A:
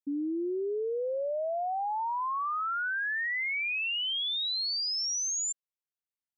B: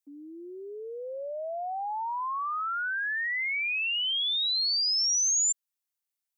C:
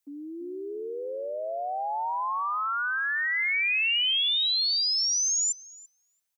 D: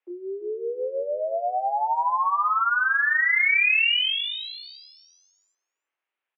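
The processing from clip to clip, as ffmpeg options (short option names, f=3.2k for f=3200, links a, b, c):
-af "highpass=650,highshelf=f=4.7k:g=9.5"
-filter_complex "[0:a]acrossover=split=1100|2200[a][b][c];[a]acompressor=threshold=-40dB:ratio=4[d];[b]acompressor=threshold=-42dB:ratio=4[e];[c]acompressor=threshold=-32dB:ratio=4[f];[d][e][f]amix=inputs=3:normalize=0,asplit=2[g][h];[h]adelay=337,lowpass=f=1.2k:p=1,volume=-7dB,asplit=2[i][j];[j]adelay=337,lowpass=f=1.2k:p=1,volume=0.33,asplit=2[k][l];[l]adelay=337,lowpass=f=1.2k:p=1,volume=0.33,asplit=2[m][n];[n]adelay=337,lowpass=f=1.2k:p=1,volume=0.33[o];[g][i][k][m][o]amix=inputs=5:normalize=0,volume=6dB"
-filter_complex "[0:a]asplit=2[a][b];[b]adelay=25,volume=-4.5dB[c];[a][c]amix=inputs=2:normalize=0,highpass=f=260:t=q:w=0.5412,highpass=f=260:t=q:w=1.307,lowpass=f=2.8k:t=q:w=0.5176,lowpass=f=2.8k:t=q:w=0.7071,lowpass=f=2.8k:t=q:w=1.932,afreqshift=68,volume=5dB"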